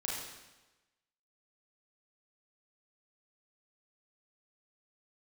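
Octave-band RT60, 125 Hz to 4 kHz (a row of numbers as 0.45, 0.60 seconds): 1.1, 1.1, 1.1, 1.1, 1.1, 1.0 seconds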